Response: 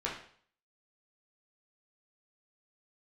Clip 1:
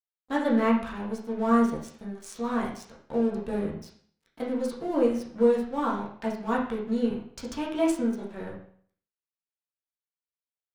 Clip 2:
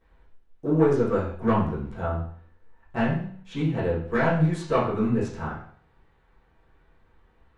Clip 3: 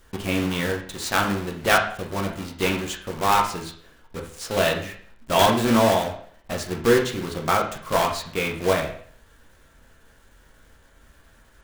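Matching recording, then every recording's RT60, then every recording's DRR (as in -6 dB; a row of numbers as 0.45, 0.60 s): 1; 0.55, 0.55, 0.55 s; -5.0, -13.5, 0.0 dB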